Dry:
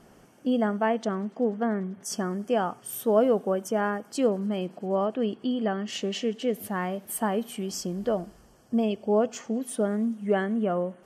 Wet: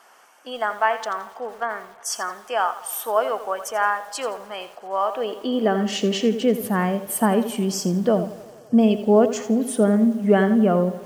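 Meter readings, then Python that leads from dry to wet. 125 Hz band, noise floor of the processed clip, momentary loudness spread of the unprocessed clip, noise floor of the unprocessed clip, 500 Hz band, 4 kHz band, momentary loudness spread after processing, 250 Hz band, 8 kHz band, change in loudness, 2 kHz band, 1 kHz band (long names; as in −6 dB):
+7.5 dB, −48 dBFS, 7 LU, −56 dBFS, +4.5 dB, +7.0 dB, 12 LU, +6.5 dB, +7.0 dB, +6.0 dB, +8.5 dB, +8.0 dB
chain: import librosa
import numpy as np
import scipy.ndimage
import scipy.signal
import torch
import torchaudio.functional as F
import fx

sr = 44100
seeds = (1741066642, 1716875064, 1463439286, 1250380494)

y = fx.filter_sweep_highpass(x, sr, from_hz=1000.0, to_hz=140.0, start_s=5.02, end_s=6.03, q=1.5)
y = fx.echo_wet_bandpass(y, sr, ms=89, feedback_pct=78, hz=670.0, wet_db=-20.0)
y = fx.echo_crushed(y, sr, ms=84, feedback_pct=35, bits=8, wet_db=-12.0)
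y = y * librosa.db_to_amplitude(6.5)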